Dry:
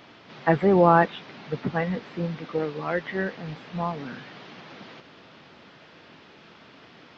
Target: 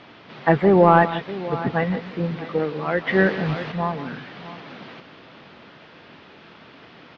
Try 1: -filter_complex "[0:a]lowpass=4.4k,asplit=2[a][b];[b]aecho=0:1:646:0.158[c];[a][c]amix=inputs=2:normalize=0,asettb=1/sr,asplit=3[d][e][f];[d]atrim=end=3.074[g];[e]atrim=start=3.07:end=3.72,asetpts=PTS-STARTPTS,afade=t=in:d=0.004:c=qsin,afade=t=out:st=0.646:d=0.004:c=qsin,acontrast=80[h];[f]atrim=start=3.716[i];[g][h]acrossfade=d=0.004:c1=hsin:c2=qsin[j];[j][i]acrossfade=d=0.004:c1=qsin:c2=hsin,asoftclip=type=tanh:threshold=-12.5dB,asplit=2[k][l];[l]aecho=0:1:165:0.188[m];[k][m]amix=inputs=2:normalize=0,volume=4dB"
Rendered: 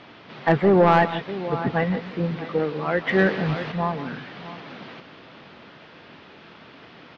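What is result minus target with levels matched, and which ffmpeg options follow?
soft clip: distortion +12 dB
-filter_complex "[0:a]lowpass=4.4k,asplit=2[a][b];[b]aecho=0:1:646:0.158[c];[a][c]amix=inputs=2:normalize=0,asettb=1/sr,asplit=3[d][e][f];[d]atrim=end=3.074[g];[e]atrim=start=3.07:end=3.72,asetpts=PTS-STARTPTS,afade=t=in:d=0.004:c=qsin,afade=t=out:st=0.646:d=0.004:c=qsin,acontrast=80[h];[f]atrim=start=3.716[i];[g][h]acrossfade=d=0.004:c1=hsin:c2=qsin[j];[j][i]acrossfade=d=0.004:c1=qsin:c2=hsin,asoftclip=type=tanh:threshold=-4dB,asplit=2[k][l];[l]aecho=0:1:165:0.188[m];[k][m]amix=inputs=2:normalize=0,volume=4dB"

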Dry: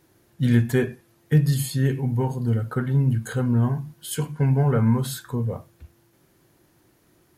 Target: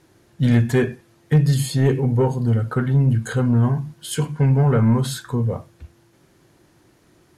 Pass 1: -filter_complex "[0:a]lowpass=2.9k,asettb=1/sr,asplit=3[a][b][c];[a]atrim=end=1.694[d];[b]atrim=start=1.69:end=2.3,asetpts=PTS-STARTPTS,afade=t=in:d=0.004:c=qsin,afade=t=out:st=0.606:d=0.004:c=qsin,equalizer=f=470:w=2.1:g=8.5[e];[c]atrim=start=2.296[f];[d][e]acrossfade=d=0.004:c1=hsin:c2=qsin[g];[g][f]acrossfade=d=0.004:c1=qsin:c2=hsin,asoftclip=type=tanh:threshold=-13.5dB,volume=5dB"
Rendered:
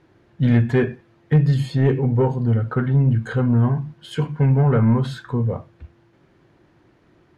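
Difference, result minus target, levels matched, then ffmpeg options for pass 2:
8000 Hz band -17.0 dB
-filter_complex "[0:a]lowpass=9.1k,asettb=1/sr,asplit=3[a][b][c];[a]atrim=end=1.694[d];[b]atrim=start=1.69:end=2.3,asetpts=PTS-STARTPTS,afade=t=in:d=0.004:c=qsin,afade=t=out:st=0.606:d=0.004:c=qsin,equalizer=f=470:w=2.1:g=8.5[e];[c]atrim=start=2.296[f];[d][e]acrossfade=d=0.004:c1=hsin:c2=qsin[g];[g][f]acrossfade=d=0.004:c1=qsin:c2=hsin,asoftclip=type=tanh:threshold=-13.5dB,volume=5dB"

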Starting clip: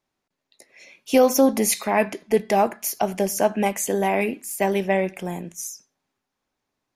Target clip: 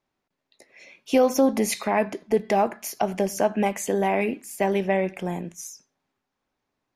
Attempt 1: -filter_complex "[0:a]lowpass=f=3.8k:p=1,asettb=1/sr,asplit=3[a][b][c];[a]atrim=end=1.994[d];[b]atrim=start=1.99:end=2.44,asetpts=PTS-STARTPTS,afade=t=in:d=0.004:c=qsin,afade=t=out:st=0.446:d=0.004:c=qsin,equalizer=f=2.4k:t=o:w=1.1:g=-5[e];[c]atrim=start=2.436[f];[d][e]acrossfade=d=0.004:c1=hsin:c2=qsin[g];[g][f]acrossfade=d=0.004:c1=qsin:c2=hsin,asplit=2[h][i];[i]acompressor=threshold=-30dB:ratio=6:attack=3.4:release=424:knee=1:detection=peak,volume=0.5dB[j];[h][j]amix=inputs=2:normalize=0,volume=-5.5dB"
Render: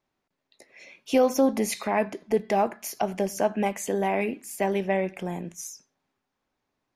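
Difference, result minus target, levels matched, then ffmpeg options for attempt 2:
compressor: peak gain reduction +9 dB
-filter_complex "[0:a]lowpass=f=3.8k:p=1,asettb=1/sr,asplit=3[a][b][c];[a]atrim=end=1.994[d];[b]atrim=start=1.99:end=2.44,asetpts=PTS-STARTPTS,afade=t=in:d=0.004:c=qsin,afade=t=out:st=0.446:d=0.004:c=qsin,equalizer=f=2.4k:t=o:w=1.1:g=-5[e];[c]atrim=start=2.436[f];[d][e]acrossfade=d=0.004:c1=hsin:c2=qsin[g];[g][f]acrossfade=d=0.004:c1=qsin:c2=hsin,asplit=2[h][i];[i]acompressor=threshold=-19dB:ratio=6:attack=3.4:release=424:knee=1:detection=peak,volume=0.5dB[j];[h][j]amix=inputs=2:normalize=0,volume=-5.5dB"

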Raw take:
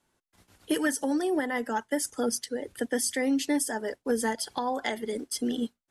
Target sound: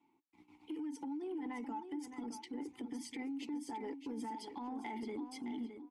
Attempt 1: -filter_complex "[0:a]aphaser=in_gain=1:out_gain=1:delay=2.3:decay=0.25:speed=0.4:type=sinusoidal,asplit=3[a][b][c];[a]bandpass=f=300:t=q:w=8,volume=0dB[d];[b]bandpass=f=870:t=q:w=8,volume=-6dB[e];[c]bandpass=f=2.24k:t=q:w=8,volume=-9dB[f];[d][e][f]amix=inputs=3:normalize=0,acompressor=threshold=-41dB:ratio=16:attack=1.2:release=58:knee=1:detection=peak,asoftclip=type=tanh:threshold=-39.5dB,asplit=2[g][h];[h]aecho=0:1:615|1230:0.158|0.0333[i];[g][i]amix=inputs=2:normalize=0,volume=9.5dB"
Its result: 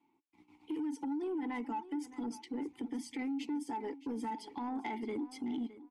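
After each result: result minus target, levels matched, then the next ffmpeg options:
compressor: peak gain reduction -6 dB; echo-to-direct -7 dB
-filter_complex "[0:a]aphaser=in_gain=1:out_gain=1:delay=2.3:decay=0.25:speed=0.4:type=sinusoidal,asplit=3[a][b][c];[a]bandpass=f=300:t=q:w=8,volume=0dB[d];[b]bandpass=f=870:t=q:w=8,volume=-6dB[e];[c]bandpass=f=2.24k:t=q:w=8,volume=-9dB[f];[d][e][f]amix=inputs=3:normalize=0,acompressor=threshold=-47.5dB:ratio=16:attack=1.2:release=58:knee=1:detection=peak,asoftclip=type=tanh:threshold=-39.5dB,asplit=2[g][h];[h]aecho=0:1:615|1230:0.158|0.0333[i];[g][i]amix=inputs=2:normalize=0,volume=9.5dB"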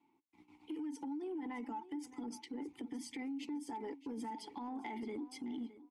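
echo-to-direct -7 dB
-filter_complex "[0:a]aphaser=in_gain=1:out_gain=1:delay=2.3:decay=0.25:speed=0.4:type=sinusoidal,asplit=3[a][b][c];[a]bandpass=f=300:t=q:w=8,volume=0dB[d];[b]bandpass=f=870:t=q:w=8,volume=-6dB[e];[c]bandpass=f=2.24k:t=q:w=8,volume=-9dB[f];[d][e][f]amix=inputs=3:normalize=0,acompressor=threshold=-47.5dB:ratio=16:attack=1.2:release=58:knee=1:detection=peak,asoftclip=type=tanh:threshold=-39.5dB,asplit=2[g][h];[h]aecho=0:1:615|1230|1845:0.355|0.0745|0.0156[i];[g][i]amix=inputs=2:normalize=0,volume=9.5dB"

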